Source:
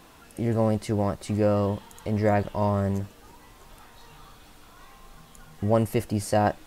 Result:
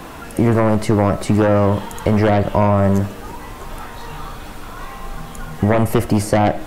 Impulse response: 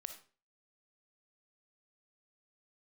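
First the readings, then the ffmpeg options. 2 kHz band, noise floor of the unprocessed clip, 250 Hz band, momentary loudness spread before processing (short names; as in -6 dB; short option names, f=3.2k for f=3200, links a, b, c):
+11.0 dB, -52 dBFS, +10.0 dB, 9 LU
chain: -filter_complex "[0:a]aeval=exprs='0.316*sin(PI/2*2.51*val(0)/0.316)':c=same,acrossover=split=240|890[a][b][c];[a]acompressor=threshold=-24dB:ratio=4[d];[b]acompressor=threshold=-23dB:ratio=4[e];[c]acompressor=threshold=-29dB:ratio=4[f];[d][e][f]amix=inputs=3:normalize=0,asplit=2[g][h];[1:a]atrim=start_sample=2205,lowpass=2.7k[i];[h][i]afir=irnorm=-1:irlink=0,volume=3dB[j];[g][j]amix=inputs=2:normalize=0,volume=1.5dB"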